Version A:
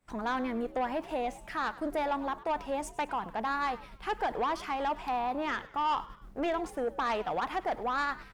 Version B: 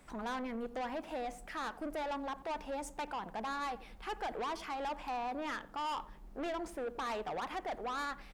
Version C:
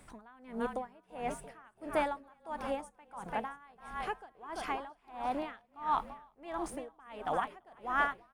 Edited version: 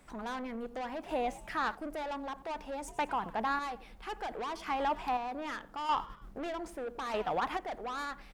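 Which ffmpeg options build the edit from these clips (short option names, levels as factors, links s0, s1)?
-filter_complex "[0:a]asplit=5[s0][s1][s2][s3][s4];[1:a]asplit=6[s5][s6][s7][s8][s9][s10];[s5]atrim=end=1.062[s11];[s0]atrim=start=1.058:end=1.752[s12];[s6]atrim=start=1.748:end=2.882[s13];[s1]atrim=start=2.878:end=3.592[s14];[s7]atrim=start=3.588:end=4.662[s15];[s2]atrim=start=4.658:end=5.172[s16];[s8]atrim=start=5.168:end=5.892[s17];[s3]atrim=start=5.888:end=6.382[s18];[s9]atrim=start=6.378:end=7.142[s19];[s4]atrim=start=7.138:end=7.572[s20];[s10]atrim=start=7.568[s21];[s11][s12]acrossfade=d=0.004:c1=hsin:c2=hsin[s22];[s22][s13]acrossfade=d=0.004:c1=hsin:c2=hsin[s23];[s23][s14]acrossfade=d=0.004:c1=hsin:c2=hsin[s24];[s24][s15]acrossfade=d=0.004:c1=hsin:c2=hsin[s25];[s25][s16]acrossfade=d=0.004:c1=hsin:c2=hsin[s26];[s26][s17]acrossfade=d=0.004:c1=hsin:c2=hsin[s27];[s27][s18]acrossfade=d=0.004:c1=hsin:c2=hsin[s28];[s28][s19]acrossfade=d=0.004:c1=hsin:c2=hsin[s29];[s29][s20]acrossfade=d=0.004:c1=hsin:c2=hsin[s30];[s30][s21]acrossfade=d=0.004:c1=hsin:c2=hsin"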